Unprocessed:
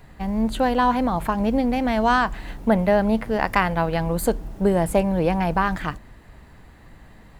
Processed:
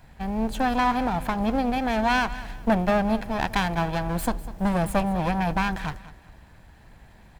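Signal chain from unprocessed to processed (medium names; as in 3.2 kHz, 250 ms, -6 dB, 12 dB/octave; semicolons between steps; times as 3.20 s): comb filter that takes the minimum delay 1.2 ms; feedback delay 199 ms, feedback 29%, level -16.5 dB; trim -2.5 dB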